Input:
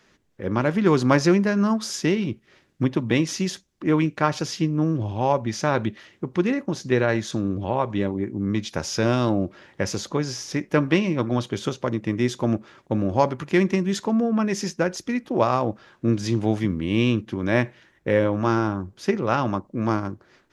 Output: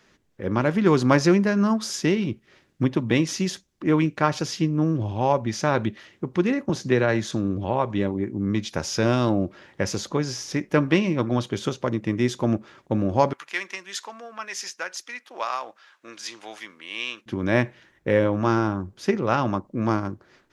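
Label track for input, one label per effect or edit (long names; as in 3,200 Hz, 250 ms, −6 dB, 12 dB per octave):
6.690000	7.320000	multiband upward and downward compressor depth 40%
13.330000	17.260000	high-pass filter 1,200 Hz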